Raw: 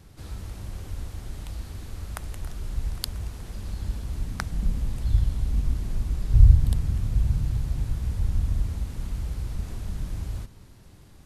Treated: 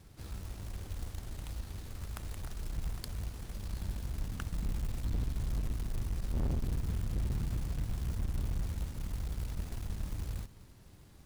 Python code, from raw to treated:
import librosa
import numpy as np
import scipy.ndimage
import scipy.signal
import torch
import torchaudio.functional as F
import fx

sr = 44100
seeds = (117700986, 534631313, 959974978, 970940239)

y = fx.tube_stage(x, sr, drive_db=26.0, bias=0.55)
y = fx.quant_float(y, sr, bits=2)
y = y * 10.0 ** (-3.0 / 20.0)